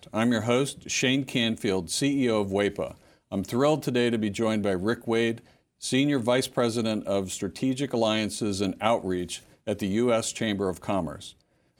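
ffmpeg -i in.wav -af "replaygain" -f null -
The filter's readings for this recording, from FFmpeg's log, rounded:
track_gain = +6.6 dB
track_peak = 0.312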